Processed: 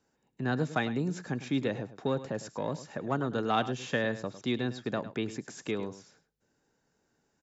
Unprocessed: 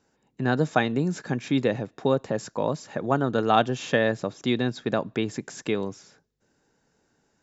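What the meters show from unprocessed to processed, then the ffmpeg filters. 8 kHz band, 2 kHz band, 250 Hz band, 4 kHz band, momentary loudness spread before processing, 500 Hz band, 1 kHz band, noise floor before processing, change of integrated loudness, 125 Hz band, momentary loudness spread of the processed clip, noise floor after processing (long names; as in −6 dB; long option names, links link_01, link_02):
can't be measured, −6.0 dB, −6.0 dB, −6.0 dB, 8 LU, −8.0 dB, −8.0 dB, −71 dBFS, −7.0 dB, −6.0 dB, 7 LU, −77 dBFS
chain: -filter_complex "[0:a]acrossover=split=460|760[link_01][link_02][link_03];[link_02]asoftclip=type=tanh:threshold=-33dB[link_04];[link_01][link_04][link_03]amix=inputs=3:normalize=0,aecho=1:1:104:0.2,volume=-6dB"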